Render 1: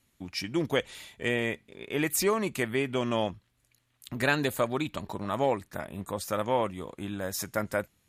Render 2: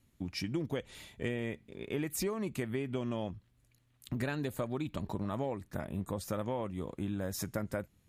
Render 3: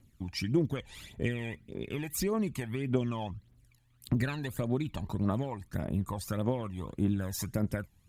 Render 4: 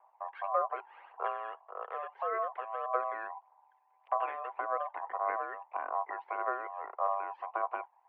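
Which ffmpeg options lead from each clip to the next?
ffmpeg -i in.wav -af "lowshelf=frequency=430:gain=11,acompressor=threshold=-26dB:ratio=6,volume=-5.5dB" out.wav
ffmpeg -i in.wav -af "aphaser=in_gain=1:out_gain=1:delay=1.3:decay=0.64:speed=1.7:type=triangular" out.wav
ffmpeg -i in.wav -af "aeval=exprs='val(0)*sin(2*PI*820*n/s)':channel_layout=same,highpass=frequency=350:width_type=q:width=0.5412,highpass=frequency=350:width_type=q:width=1.307,lowpass=frequency=2200:width_type=q:width=0.5176,lowpass=frequency=2200:width_type=q:width=0.7071,lowpass=frequency=2200:width_type=q:width=1.932,afreqshift=68" out.wav

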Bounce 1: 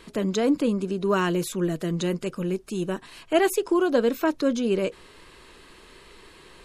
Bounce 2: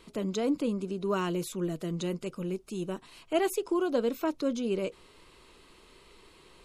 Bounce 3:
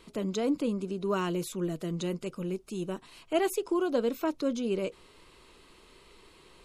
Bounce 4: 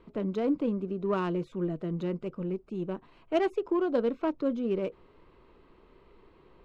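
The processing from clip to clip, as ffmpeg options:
ffmpeg -i in.wav -af "equalizer=frequency=1700:width_type=o:width=0.24:gain=-9,volume=-6.5dB" out.wav
ffmpeg -i in.wav -af anull out.wav
ffmpeg -i in.wav -af "adynamicsmooth=sensitivity=1.5:basefreq=1500,volume=1dB" out.wav

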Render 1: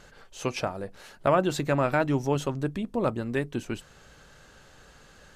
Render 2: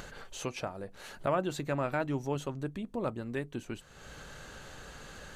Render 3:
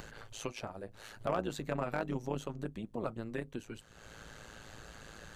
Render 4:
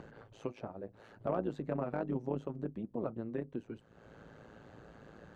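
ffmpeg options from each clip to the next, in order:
ffmpeg -i in.wav -af "bandreject=frequency=5200:width=12,acompressor=mode=upward:threshold=-27dB:ratio=2.5,volume=-7.5dB" out.wav
ffmpeg -i in.wav -filter_complex "[0:a]tremolo=f=110:d=0.824,acrossover=split=640|4400[link_01][link_02][link_03];[link_02]volume=28.5dB,asoftclip=hard,volume=-28.5dB[link_04];[link_01][link_04][link_03]amix=inputs=3:normalize=0" out.wav
ffmpeg -i in.wav -af "bandpass=frequency=290:width_type=q:width=0.55:csg=0,volume=2dB" out.wav

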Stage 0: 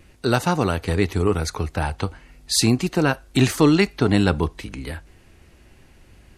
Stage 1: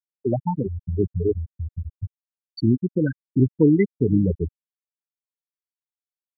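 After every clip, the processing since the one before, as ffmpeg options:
ffmpeg -i in.wav -filter_complex "[0:a]asplit=2[link_01][link_02];[link_02]adelay=501.5,volume=-15dB,highshelf=frequency=4000:gain=-11.3[link_03];[link_01][link_03]amix=inputs=2:normalize=0,afftfilt=real='re*gte(hypot(re,im),0.562)':imag='im*gte(hypot(re,im),0.562)':win_size=1024:overlap=0.75" out.wav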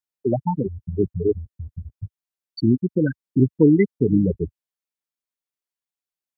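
ffmpeg -i in.wav -af "equalizer=frequency=80:width=1.6:gain=-6.5,volume=2dB" out.wav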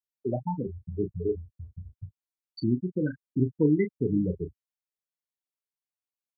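ffmpeg -i in.wav -filter_complex "[0:a]asplit=2[link_01][link_02];[link_02]adelay=33,volume=-9dB[link_03];[link_01][link_03]amix=inputs=2:normalize=0,volume=-8.5dB" out.wav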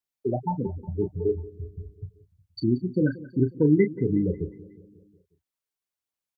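ffmpeg -i in.wav -af "aphaser=in_gain=1:out_gain=1:delay=2.7:decay=0.26:speed=1.3:type=sinusoidal,aecho=1:1:181|362|543|724|905:0.112|0.0662|0.0391|0.023|0.0136,volume=3dB" out.wav

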